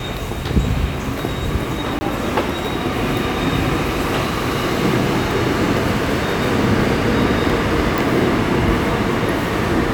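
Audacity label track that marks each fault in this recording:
1.990000	2.010000	dropout 20 ms
7.980000	7.980000	pop

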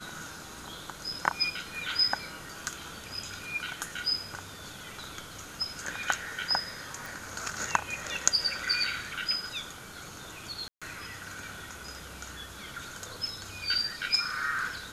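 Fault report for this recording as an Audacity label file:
7.060000	7.060000	pop
10.680000	10.820000	dropout 136 ms

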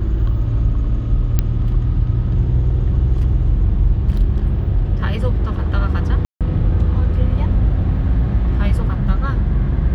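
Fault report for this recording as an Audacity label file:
1.390000	1.390000	pop -4 dBFS
6.250000	6.410000	dropout 157 ms

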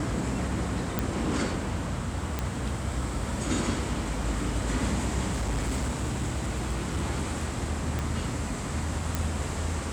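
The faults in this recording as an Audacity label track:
0.990000	0.990000	pop -12 dBFS
2.390000	2.390000	pop -14 dBFS
5.310000	7.030000	clipped -24.5 dBFS
7.990000	7.990000	pop
9.150000	9.150000	pop

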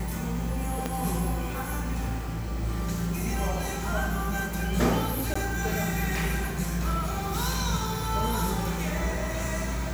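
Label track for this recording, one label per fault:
0.860000	0.860000	pop -14 dBFS
5.340000	5.360000	dropout 15 ms

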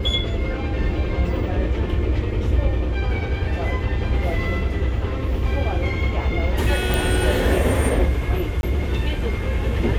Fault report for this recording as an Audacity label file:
6.940000	6.940000	pop
8.610000	8.630000	dropout 21 ms

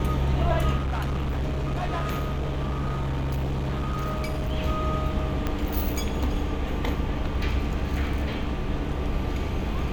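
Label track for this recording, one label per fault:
0.760000	4.530000	clipped -24 dBFS
5.470000	5.470000	pop -14 dBFS

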